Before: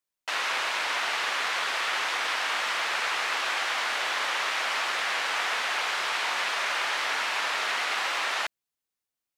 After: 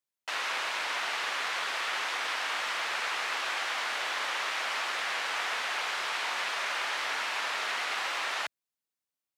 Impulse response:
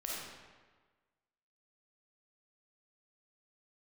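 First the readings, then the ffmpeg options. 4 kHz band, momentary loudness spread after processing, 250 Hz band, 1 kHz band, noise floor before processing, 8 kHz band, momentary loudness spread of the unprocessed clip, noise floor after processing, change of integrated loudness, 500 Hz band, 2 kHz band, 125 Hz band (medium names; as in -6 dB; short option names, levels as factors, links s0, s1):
-4.0 dB, 0 LU, -4.0 dB, -4.0 dB, under -85 dBFS, -4.0 dB, 0 LU, under -85 dBFS, -4.0 dB, -4.0 dB, -4.0 dB, no reading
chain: -af "highpass=87,volume=0.631"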